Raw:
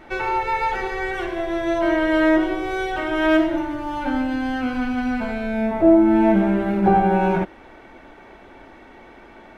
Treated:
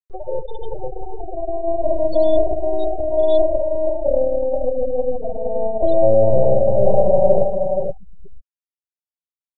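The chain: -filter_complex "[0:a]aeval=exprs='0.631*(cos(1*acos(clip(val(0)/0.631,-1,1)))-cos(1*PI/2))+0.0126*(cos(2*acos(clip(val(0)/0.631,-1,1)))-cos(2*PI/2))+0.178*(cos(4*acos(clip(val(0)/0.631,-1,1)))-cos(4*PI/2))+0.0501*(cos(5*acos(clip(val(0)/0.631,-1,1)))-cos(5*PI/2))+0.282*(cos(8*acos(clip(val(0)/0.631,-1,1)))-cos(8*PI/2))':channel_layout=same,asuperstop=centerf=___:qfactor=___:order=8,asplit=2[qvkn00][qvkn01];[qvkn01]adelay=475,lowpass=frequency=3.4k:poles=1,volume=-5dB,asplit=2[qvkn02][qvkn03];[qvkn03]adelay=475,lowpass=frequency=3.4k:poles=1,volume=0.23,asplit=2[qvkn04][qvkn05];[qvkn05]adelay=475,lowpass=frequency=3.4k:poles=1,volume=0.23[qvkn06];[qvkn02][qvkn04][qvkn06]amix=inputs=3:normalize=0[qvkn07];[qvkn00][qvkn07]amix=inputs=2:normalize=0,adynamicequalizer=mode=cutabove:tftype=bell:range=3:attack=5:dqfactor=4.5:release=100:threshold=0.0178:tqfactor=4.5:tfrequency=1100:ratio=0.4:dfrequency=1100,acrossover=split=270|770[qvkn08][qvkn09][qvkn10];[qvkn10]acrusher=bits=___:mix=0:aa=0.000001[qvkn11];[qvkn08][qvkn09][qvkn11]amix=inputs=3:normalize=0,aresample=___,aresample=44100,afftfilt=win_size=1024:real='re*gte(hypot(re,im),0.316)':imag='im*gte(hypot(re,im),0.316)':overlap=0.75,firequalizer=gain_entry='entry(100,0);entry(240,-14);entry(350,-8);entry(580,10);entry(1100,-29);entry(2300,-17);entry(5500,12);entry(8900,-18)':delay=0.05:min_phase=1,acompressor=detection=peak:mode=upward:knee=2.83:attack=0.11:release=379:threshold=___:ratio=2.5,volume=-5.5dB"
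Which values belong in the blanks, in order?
1900, 0.82, 6, 11025, -18dB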